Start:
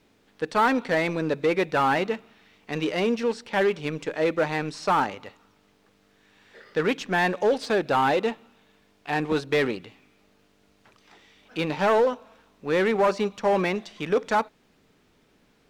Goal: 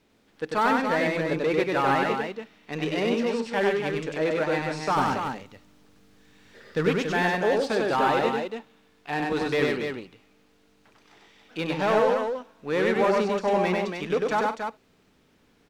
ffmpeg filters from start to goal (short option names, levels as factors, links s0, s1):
-filter_complex "[0:a]asettb=1/sr,asplit=3[s0][s1][s2];[s0]atrim=end=4.964[s3];[s1]atrim=start=4.96:end=6.89,asetpts=PTS-STARTPTS,afade=t=in:d=0.004:c=qsin,afade=t=out:st=1.926:d=0.004:c=qsin,bass=f=250:g=9,treble=f=4000:g=5[s4];[s2]atrim=start=6.886[s5];[s3][s4]acrossfade=d=0.004:c1=hsin:c2=qsin[s6];[s6][s5]acrossfade=d=0.004:c1=qsin:c2=hsin,aecho=1:1:96.21|139.9|282.8:0.794|0.251|0.501,volume=0.708"